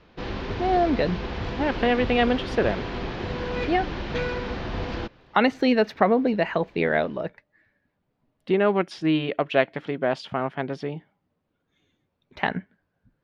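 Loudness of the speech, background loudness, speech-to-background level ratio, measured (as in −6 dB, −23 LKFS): −24.5 LKFS, −31.5 LKFS, 7.0 dB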